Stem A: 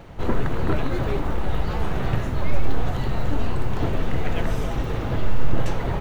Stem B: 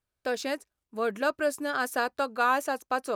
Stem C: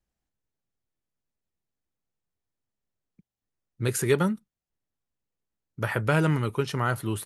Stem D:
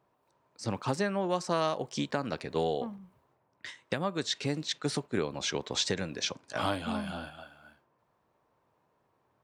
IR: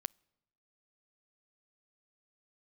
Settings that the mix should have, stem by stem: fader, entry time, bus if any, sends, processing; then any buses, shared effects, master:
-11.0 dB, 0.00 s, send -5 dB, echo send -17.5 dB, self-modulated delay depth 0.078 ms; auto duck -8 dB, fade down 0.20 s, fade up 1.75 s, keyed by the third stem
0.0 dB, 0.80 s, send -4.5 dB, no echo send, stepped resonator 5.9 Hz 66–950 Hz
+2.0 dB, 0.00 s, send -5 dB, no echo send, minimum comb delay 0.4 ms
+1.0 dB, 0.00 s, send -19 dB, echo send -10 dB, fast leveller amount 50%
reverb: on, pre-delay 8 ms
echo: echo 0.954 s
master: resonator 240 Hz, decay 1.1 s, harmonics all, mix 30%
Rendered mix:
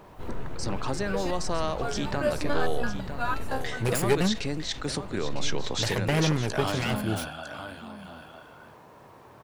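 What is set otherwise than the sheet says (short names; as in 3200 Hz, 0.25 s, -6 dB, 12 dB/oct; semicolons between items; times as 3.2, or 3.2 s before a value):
stem A: missing self-modulated delay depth 0.078 ms; stem B 0.0 dB -> +8.0 dB; reverb return -9.5 dB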